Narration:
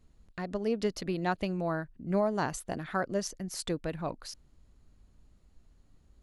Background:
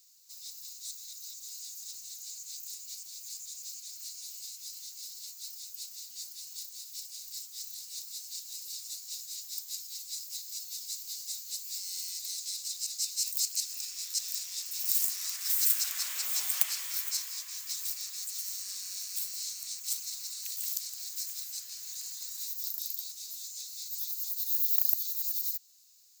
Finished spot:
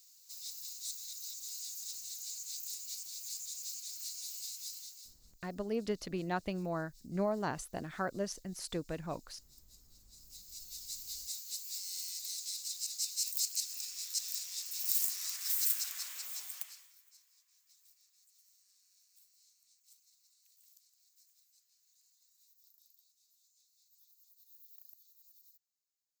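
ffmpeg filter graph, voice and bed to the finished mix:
-filter_complex "[0:a]adelay=5050,volume=0.562[s0];[1:a]volume=9.44,afade=t=out:st=4.63:d=0.54:silence=0.0707946,afade=t=in:st=10.11:d=0.98:silence=0.105925,afade=t=out:st=15.37:d=1.58:silence=0.0446684[s1];[s0][s1]amix=inputs=2:normalize=0"

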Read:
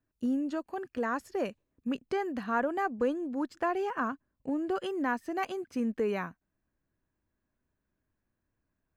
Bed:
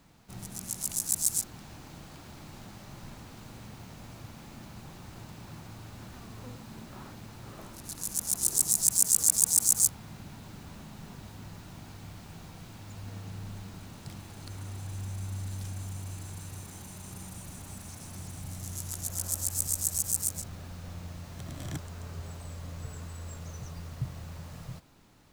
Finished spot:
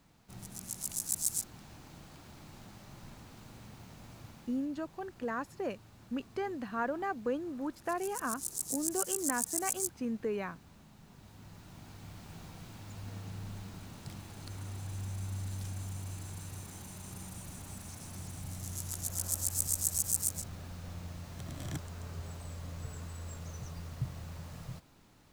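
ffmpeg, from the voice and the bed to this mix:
-filter_complex "[0:a]adelay=4250,volume=0.596[s0];[1:a]volume=1.68,afade=t=out:st=4.28:d=0.4:silence=0.473151,afade=t=in:st=11.06:d=1.33:silence=0.334965[s1];[s0][s1]amix=inputs=2:normalize=0"

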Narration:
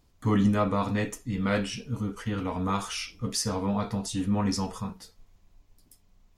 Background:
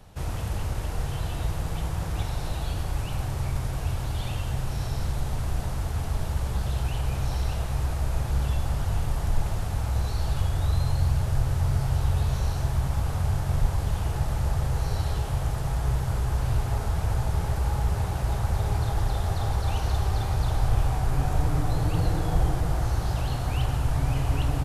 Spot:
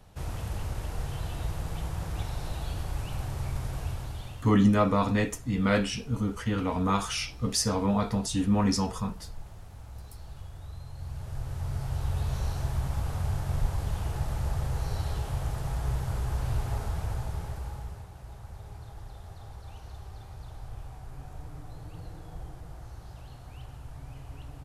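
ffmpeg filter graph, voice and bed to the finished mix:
-filter_complex "[0:a]adelay=4200,volume=1.26[s0];[1:a]volume=2.82,afade=t=out:st=3.79:d=0.76:silence=0.211349,afade=t=in:st=10.92:d=1.48:silence=0.211349,afade=t=out:st=16.75:d=1.32:silence=0.199526[s1];[s0][s1]amix=inputs=2:normalize=0"

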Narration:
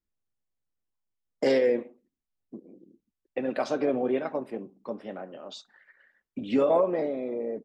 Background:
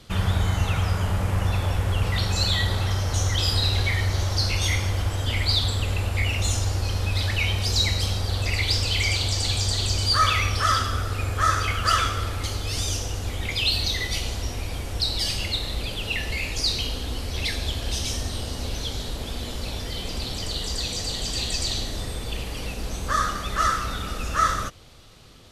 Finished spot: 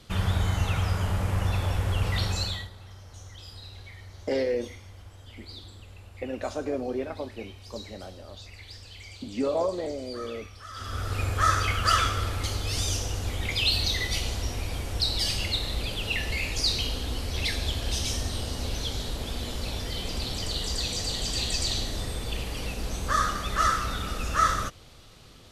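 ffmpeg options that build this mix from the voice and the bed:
-filter_complex "[0:a]adelay=2850,volume=0.631[s0];[1:a]volume=7.5,afade=t=out:st=2.25:d=0.45:silence=0.112202,afade=t=in:st=10.73:d=0.45:silence=0.0944061[s1];[s0][s1]amix=inputs=2:normalize=0"

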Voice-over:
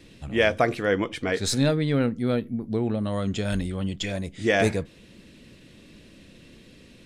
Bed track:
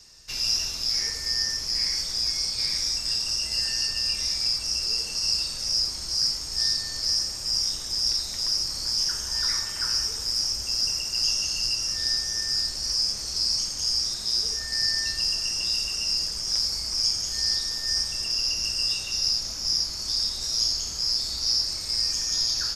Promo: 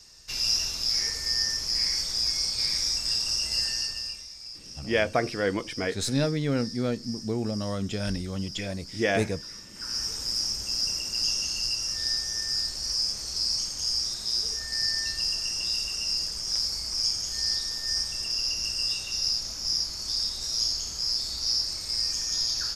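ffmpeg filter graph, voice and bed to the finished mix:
-filter_complex "[0:a]adelay=4550,volume=0.668[s0];[1:a]volume=4.73,afade=t=out:st=3.58:d=0.68:silence=0.158489,afade=t=in:st=9.71:d=0.4:silence=0.199526[s1];[s0][s1]amix=inputs=2:normalize=0"

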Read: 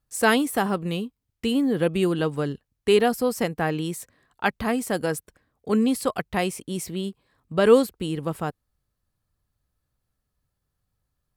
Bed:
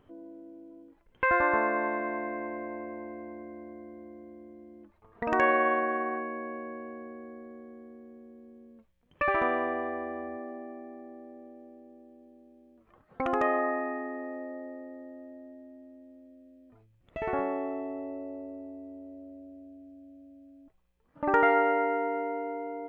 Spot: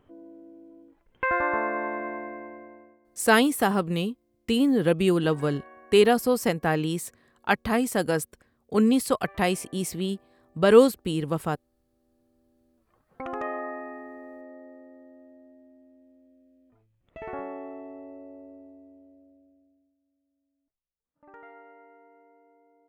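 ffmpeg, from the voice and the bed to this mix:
-filter_complex "[0:a]adelay=3050,volume=1.06[s0];[1:a]volume=7.5,afade=t=out:st=2.06:d=0.93:silence=0.0707946,afade=t=in:st=11.84:d=1.38:silence=0.125893,afade=t=out:st=18.54:d=1.42:silence=0.0944061[s1];[s0][s1]amix=inputs=2:normalize=0"

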